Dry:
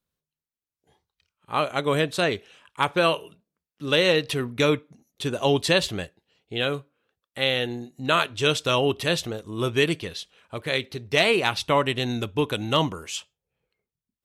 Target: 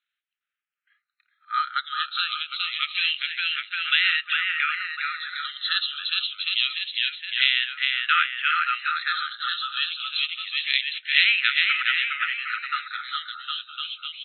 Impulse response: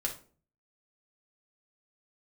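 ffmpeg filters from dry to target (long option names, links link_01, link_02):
-filter_complex "[0:a]aecho=1:1:410|758.5|1055|1307|1521:0.631|0.398|0.251|0.158|0.1,asplit=2[link_01][link_02];[link_02]acompressor=threshold=-28dB:ratio=6,volume=2.5dB[link_03];[link_01][link_03]amix=inputs=2:normalize=0,afftfilt=real='re*between(b*sr/4096,1200,4200)':imag='im*between(b*sr/4096,1200,4200)':win_size=4096:overlap=0.75,asplit=2[link_04][link_05];[link_05]afreqshift=-0.26[link_06];[link_04][link_06]amix=inputs=2:normalize=1,volume=2.5dB"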